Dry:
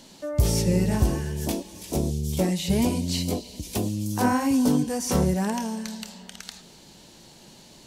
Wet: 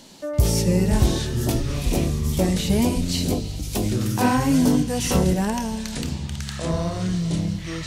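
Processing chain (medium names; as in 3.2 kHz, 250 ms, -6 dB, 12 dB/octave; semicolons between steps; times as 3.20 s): ever faster or slower copies 335 ms, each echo -7 st, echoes 2, each echo -6 dB; trim +2.5 dB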